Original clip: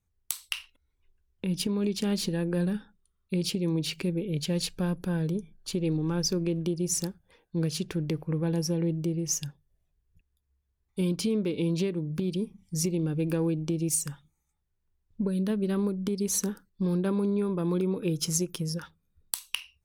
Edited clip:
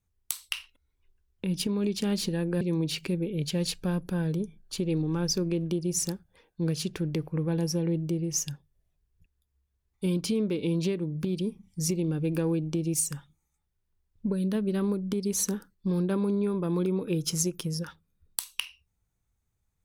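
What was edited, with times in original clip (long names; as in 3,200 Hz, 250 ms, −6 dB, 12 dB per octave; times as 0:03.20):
0:02.61–0:03.56: remove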